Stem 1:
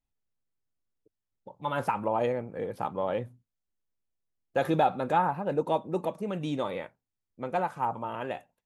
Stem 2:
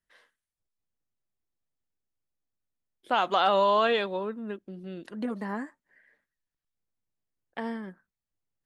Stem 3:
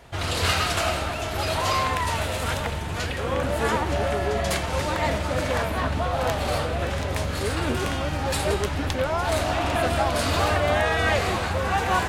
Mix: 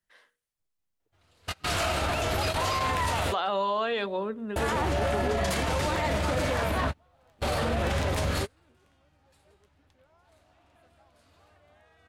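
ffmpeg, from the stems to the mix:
-filter_complex "[0:a]equalizer=f=190:w=0.72:g=-6.5,volume=0.266,asplit=2[s0][s1];[1:a]bandreject=f=60:t=h:w=6,bandreject=f=120:t=h:w=6,bandreject=f=180:t=h:w=6,bandreject=f=240:t=h:w=6,bandreject=f=300:t=h:w=6,bandreject=f=360:t=h:w=6,bandreject=f=420:t=h:w=6,bandreject=f=480:t=h:w=6,bandreject=f=540:t=h:w=6,bandreject=f=600:t=h:w=6,alimiter=limit=0.106:level=0:latency=1,volume=1.19[s2];[2:a]adelay=1000,volume=1.26[s3];[s1]apad=whole_len=577173[s4];[s3][s4]sidechaingate=range=0.00891:threshold=0.00178:ratio=16:detection=peak[s5];[s0][s2][s5]amix=inputs=3:normalize=0,alimiter=limit=0.112:level=0:latency=1:release=21"

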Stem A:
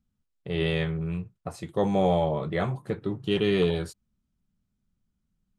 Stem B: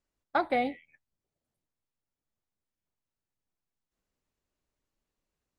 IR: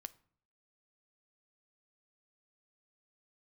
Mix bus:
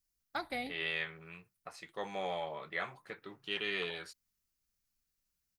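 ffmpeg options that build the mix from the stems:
-filter_complex "[0:a]bandpass=f=2100:t=q:w=1.4:csg=0,adelay=200,volume=0.944[s0];[1:a]equalizer=f=520:w=0.36:g=-13.5,volume=0.708,asplit=2[s1][s2];[s2]volume=0.562[s3];[2:a]atrim=start_sample=2205[s4];[s3][s4]afir=irnorm=-1:irlink=0[s5];[s0][s1][s5]amix=inputs=3:normalize=0,aexciter=amount=3:drive=1.3:freq=4500"

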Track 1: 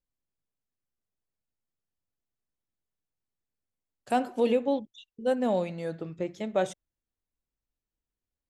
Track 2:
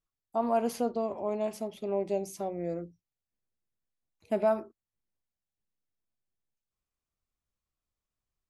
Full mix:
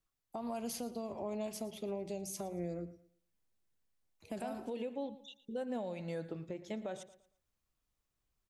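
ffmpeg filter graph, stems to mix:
-filter_complex "[0:a]bandreject=f=1200:w=14,acompressor=threshold=0.0316:ratio=4,adelay=300,volume=0.75,asplit=2[s0][s1];[s1]volume=0.126[s2];[1:a]acrossover=split=170|3000[s3][s4][s5];[s4]acompressor=threshold=0.01:ratio=6[s6];[s3][s6][s5]amix=inputs=3:normalize=0,volume=1.41,asplit=2[s7][s8];[s8]volume=0.141[s9];[s2][s9]amix=inputs=2:normalize=0,aecho=0:1:114|228|342|456:1|0.28|0.0784|0.022[s10];[s0][s7][s10]amix=inputs=3:normalize=0,alimiter=level_in=2.11:limit=0.0631:level=0:latency=1:release=248,volume=0.473"

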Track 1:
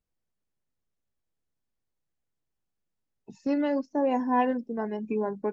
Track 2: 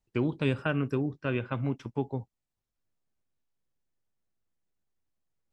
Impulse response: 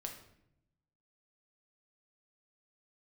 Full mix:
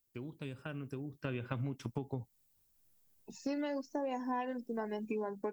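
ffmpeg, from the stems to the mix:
-filter_complex "[0:a]lowshelf=f=140:g=-10.5,volume=0.841[s0];[1:a]dynaudnorm=f=350:g=5:m=4.73,lowshelf=f=480:g=6,acompressor=threshold=0.0891:ratio=4,volume=0.299,afade=t=in:st=1.14:d=0.21:silence=0.421697[s1];[s0][s1]amix=inputs=2:normalize=0,aemphasis=mode=production:type=75fm,acompressor=threshold=0.0224:ratio=12"

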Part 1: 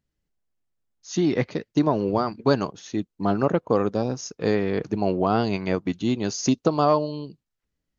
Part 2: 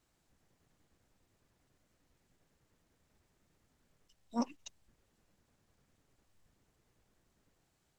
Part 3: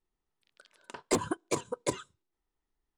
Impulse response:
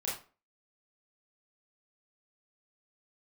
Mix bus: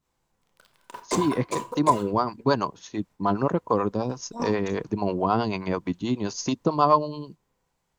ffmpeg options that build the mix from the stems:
-filter_complex "[0:a]acrossover=split=450[s0][s1];[s0]aeval=exprs='val(0)*(1-0.7/2+0.7/2*cos(2*PI*9.3*n/s))':c=same[s2];[s1]aeval=exprs='val(0)*(1-0.7/2-0.7/2*cos(2*PI*9.3*n/s))':c=same[s3];[s2][s3]amix=inputs=2:normalize=0,volume=1.06,asplit=2[s4][s5];[1:a]volume=1,asplit=2[s6][s7];[s7]volume=0.668[s8];[2:a]acrusher=bits=9:dc=4:mix=0:aa=0.000001,volume=0.708,asplit=2[s9][s10];[s10]volume=0.398[s11];[s5]apad=whole_len=352231[s12];[s6][s12]sidechaingate=range=0.0224:threshold=0.00794:ratio=16:detection=peak[s13];[3:a]atrim=start_sample=2205[s14];[s8][s11]amix=inputs=2:normalize=0[s15];[s15][s14]afir=irnorm=-1:irlink=0[s16];[s4][s13][s9][s16]amix=inputs=4:normalize=0,equalizer=f=1000:w=5.3:g=11"

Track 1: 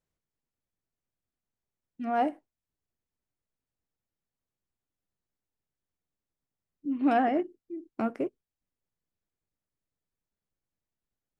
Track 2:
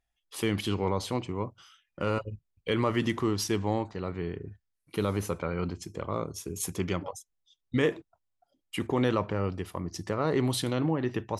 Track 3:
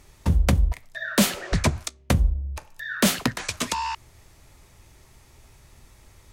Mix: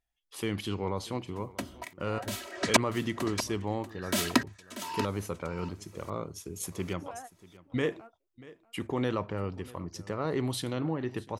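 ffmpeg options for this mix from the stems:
-filter_complex "[0:a]highpass=520,volume=0.133,asplit=2[s0][s1];[s1]volume=0.141[s2];[1:a]volume=0.631,asplit=3[s3][s4][s5];[s4]volume=0.0944[s6];[2:a]highpass=f=150:w=0.5412,highpass=f=150:w=1.3066,aecho=1:1:3.1:0.84,aeval=exprs='val(0)*pow(10,-36*if(lt(mod(-1.2*n/s,1),2*abs(-1.2)/1000),1-mod(-1.2*n/s,1)/(2*abs(-1.2)/1000),(mod(-1.2*n/s,1)-2*abs(-1.2)/1000)/(1-2*abs(-1.2)/1000))/20)':c=same,adelay=1100,volume=1.12,asplit=2[s7][s8];[s8]volume=0.251[s9];[s5]apad=whole_len=502495[s10];[s0][s10]sidechaingate=range=0.0224:threshold=0.002:ratio=16:detection=peak[s11];[s2][s6][s9]amix=inputs=3:normalize=0,aecho=0:1:638:1[s12];[s11][s3][s7][s12]amix=inputs=4:normalize=0"

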